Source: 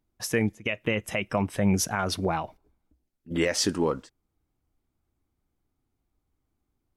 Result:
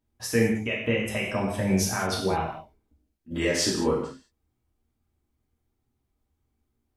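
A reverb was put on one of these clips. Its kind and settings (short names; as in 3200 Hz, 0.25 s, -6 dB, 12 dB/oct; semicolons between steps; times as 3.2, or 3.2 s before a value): non-linear reverb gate 0.24 s falling, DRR -4 dB; gain -4.5 dB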